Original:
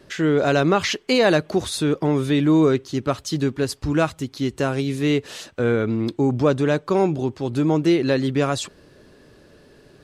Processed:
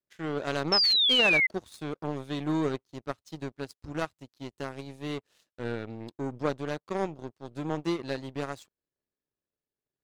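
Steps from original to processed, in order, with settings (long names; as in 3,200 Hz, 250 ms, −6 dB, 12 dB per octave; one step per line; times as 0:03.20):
power curve on the samples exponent 2
sound drawn into the spectrogram fall, 0:00.72–0:01.47, 2,000–5,400 Hz −17 dBFS
level −6 dB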